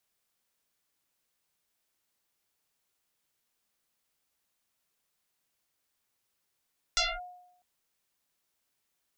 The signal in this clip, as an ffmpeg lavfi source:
ffmpeg -f lavfi -i "aevalsrc='0.0841*pow(10,-3*t/0.82)*sin(2*PI*720*t+8.9*clip(1-t/0.23,0,1)*sin(2*PI*0.96*720*t))':duration=0.65:sample_rate=44100" out.wav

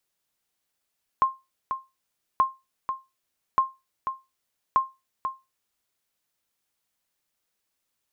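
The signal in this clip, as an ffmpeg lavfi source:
ffmpeg -f lavfi -i "aevalsrc='0.251*(sin(2*PI*1060*mod(t,1.18))*exp(-6.91*mod(t,1.18)/0.23)+0.376*sin(2*PI*1060*max(mod(t,1.18)-0.49,0))*exp(-6.91*max(mod(t,1.18)-0.49,0)/0.23))':duration=4.72:sample_rate=44100" out.wav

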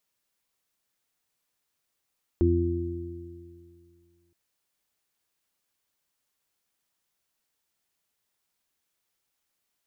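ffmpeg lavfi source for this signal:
ffmpeg -f lavfi -i "aevalsrc='0.0891*pow(10,-3*t/2.31)*sin(2*PI*86.2*t)+0.0224*pow(10,-3*t/2.51)*sin(2*PI*172.4*t)+0.0422*pow(10,-3*t/1.82)*sin(2*PI*258.6*t)+0.1*pow(10,-3*t/2.33)*sin(2*PI*344.8*t)':duration=1.92:sample_rate=44100" out.wav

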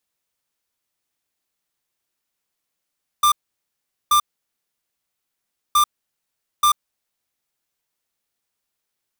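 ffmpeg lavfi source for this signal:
ffmpeg -f lavfi -i "aevalsrc='0.188*(2*lt(mod(1190*t,1),0.5)-1)*clip(min(mod(mod(t,2.52),0.88),0.09-mod(mod(t,2.52),0.88))/0.005,0,1)*lt(mod(t,2.52),1.76)':duration=5.04:sample_rate=44100" out.wav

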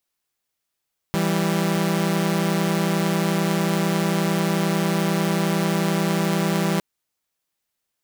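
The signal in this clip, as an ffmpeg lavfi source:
ffmpeg -f lavfi -i "aevalsrc='0.106*((2*mod(164.81*t,1)-1)+(2*mod(196*t,1)-1))':duration=5.66:sample_rate=44100" out.wav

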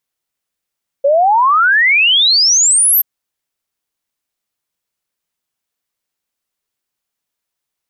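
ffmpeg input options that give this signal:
ffmpeg -f lavfi -i "aevalsrc='0.422*clip(min(t,1.98-t)/0.01,0,1)*sin(2*PI*540*1.98/log(13000/540)*(exp(log(13000/540)*t/1.98)-1))':duration=1.98:sample_rate=44100" out.wav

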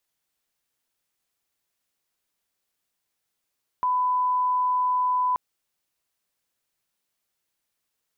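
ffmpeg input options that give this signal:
ffmpeg -f lavfi -i "sine=frequency=1000:duration=1.53:sample_rate=44100,volume=-1.94dB" out.wav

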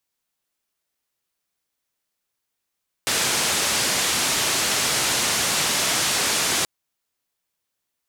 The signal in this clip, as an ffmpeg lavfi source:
ffmpeg -f lavfi -i "anoisesrc=color=white:duration=3.58:sample_rate=44100:seed=1,highpass=frequency=86,lowpass=frequency=8400,volume=-13.1dB" out.wav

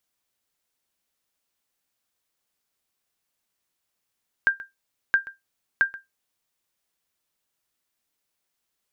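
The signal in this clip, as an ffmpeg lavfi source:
ffmpeg -f lavfi -i "aevalsrc='0.299*(sin(2*PI*1590*mod(t,0.67))*exp(-6.91*mod(t,0.67)/0.17)+0.119*sin(2*PI*1590*max(mod(t,0.67)-0.13,0))*exp(-6.91*max(mod(t,0.67)-0.13,0)/0.17))':duration=2.01:sample_rate=44100" out.wav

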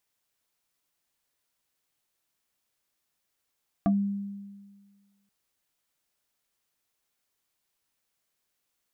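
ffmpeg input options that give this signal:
ffmpeg -f lavfi -i "aevalsrc='0.119*pow(10,-3*t/1.6)*sin(2*PI*200*t+1.4*pow(10,-3*t/0.14)*sin(2*PI*2.41*200*t))':duration=1.43:sample_rate=44100" out.wav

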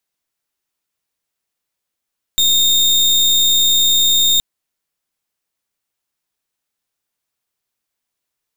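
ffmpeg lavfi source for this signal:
ffmpeg -f lavfi -i "aevalsrc='0.224*(2*lt(mod(3670*t,1),0.34)-1)':duration=2.02:sample_rate=44100" out.wav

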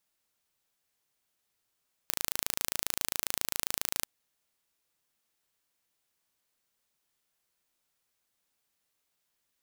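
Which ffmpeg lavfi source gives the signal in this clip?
ffmpeg -f lavfi -i "aevalsrc='0.75*eq(mod(n,1609),0)':duration=1.96:sample_rate=44100" out.wav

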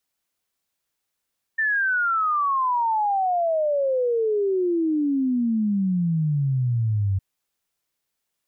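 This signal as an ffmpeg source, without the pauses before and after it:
ffmpeg -f lavfi -i "aevalsrc='0.112*clip(min(t,5.61-t)/0.01,0,1)*sin(2*PI*1800*5.61/log(94/1800)*(exp(log(94/1800)*t/5.61)-1))':duration=5.61:sample_rate=44100" out.wav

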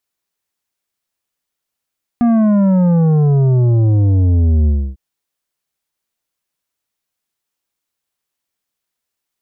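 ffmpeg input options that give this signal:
ffmpeg -f lavfi -i "aevalsrc='0.316*clip((2.75-t)/0.29,0,1)*tanh(2.82*sin(2*PI*240*2.75/log(65/240)*(exp(log(65/240)*t/2.75)-1)))/tanh(2.82)':duration=2.75:sample_rate=44100" out.wav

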